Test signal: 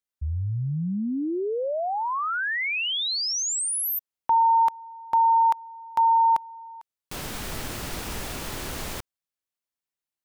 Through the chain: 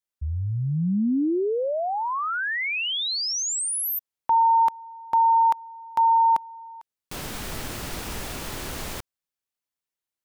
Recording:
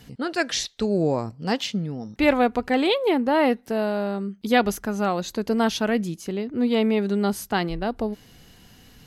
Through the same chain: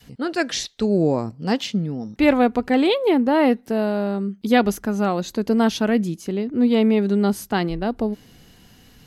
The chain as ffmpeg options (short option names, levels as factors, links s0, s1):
-af "adynamicequalizer=threshold=0.0224:dfrequency=250:dqfactor=0.76:tfrequency=250:tqfactor=0.76:attack=5:release=100:ratio=0.375:range=2.5:mode=boostabove:tftype=bell"